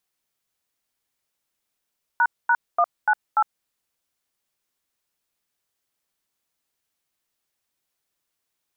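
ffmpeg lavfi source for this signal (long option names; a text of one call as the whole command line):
ffmpeg -f lavfi -i "aevalsrc='0.133*clip(min(mod(t,0.292),0.058-mod(t,0.292))/0.002,0,1)*(eq(floor(t/0.292),0)*(sin(2*PI*941*mod(t,0.292))+sin(2*PI*1477*mod(t,0.292)))+eq(floor(t/0.292),1)*(sin(2*PI*941*mod(t,0.292))+sin(2*PI*1477*mod(t,0.292)))+eq(floor(t/0.292),2)*(sin(2*PI*697*mod(t,0.292))+sin(2*PI*1209*mod(t,0.292)))+eq(floor(t/0.292),3)*(sin(2*PI*852*mod(t,0.292))+sin(2*PI*1477*mod(t,0.292)))+eq(floor(t/0.292),4)*(sin(2*PI*852*mod(t,0.292))+sin(2*PI*1336*mod(t,0.292))))':duration=1.46:sample_rate=44100" out.wav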